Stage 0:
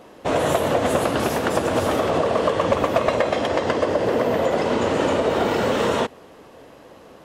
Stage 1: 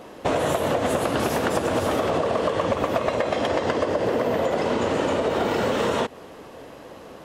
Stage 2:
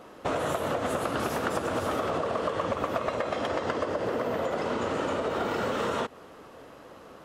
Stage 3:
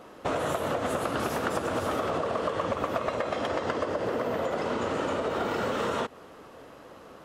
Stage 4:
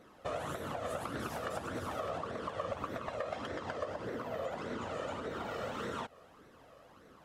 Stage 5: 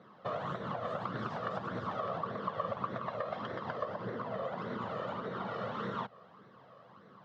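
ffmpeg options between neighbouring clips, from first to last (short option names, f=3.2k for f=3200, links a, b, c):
-af "acompressor=threshold=-23dB:ratio=6,volume=3.5dB"
-af "equalizer=f=1.3k:t=o:w=0.41:g=7,volume=-7dB"
-af anull
-af "flanger=delay=0.5:depth=1.2:regen=19:speed=1.7:shape=sinusoidal,volume=-6dB"
-af "highpass=f=110:w=0.5412,highpass=f=110:w=1.3066,equalizer=f=120:t=q:w=4:g=7,equalizer=f=190:t=q:w=4:g=8,equalizer=f=290:t=q:w=4:g=-6,equalizer=f=1.1k:t=q:w=4:g=6,equalizer=f=2.5k:t=q:w=4:g=-7,lowpass=f=4.3k:w=0.5412,lowpass=f=4.3k:w=1.3066"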